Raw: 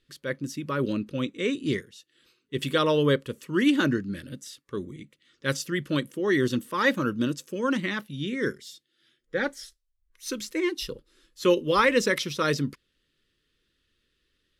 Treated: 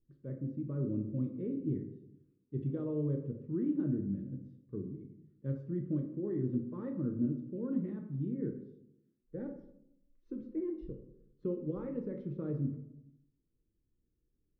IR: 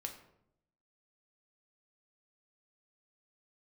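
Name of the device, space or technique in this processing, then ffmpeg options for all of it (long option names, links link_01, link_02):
television next door: -filter_complex "[0:a]acompressor=threshold=-24dB:ratio=4,lowpass=280[link_01];[1:a]atrim=start_sample=2205[link_02];[link_01][link_02]afir=irnorm=-1:irlink=0"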